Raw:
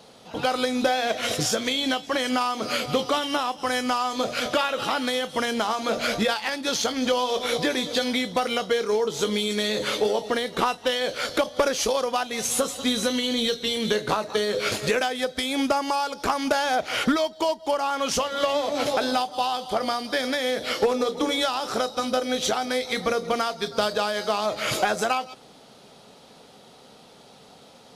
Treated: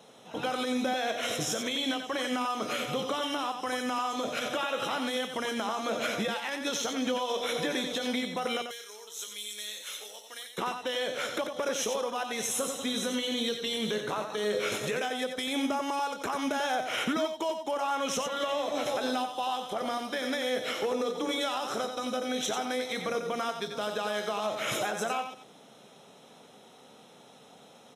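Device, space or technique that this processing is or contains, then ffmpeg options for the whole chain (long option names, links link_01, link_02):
PA system with an anti-feedback notch: -filter_complex "[0:a]asettb=1/sr,asplit=3[link_01][link_02][link_03];[link_01]atrim=end=8.624[link_04];[link_02]atrim=start=8.62:end=10.58,asetpts=PTS-STARTPTS,afade=type=in:duration=0.004:curve=qsin,afade=type=out:start_time=1.956:duration=0.004:curve=qsin,aderivative[link_05];[link_03]atrim=start=10.576[link_06];[link_04][link_05]acrossfade=duration=0.004:curve1=hsin:curve2=qsin[link_07];[link_07][link_06]acrossfade=duration=0.004:curve1=qsin:curve2=hsin,highpass=130,asuperstop=centerf=4600:order=4:qfactor=4.6,alimiter=limit=-17.5dB:level=0:latency=1:release=71,aecho=1:1:91:0.447,volume=-4.5dB"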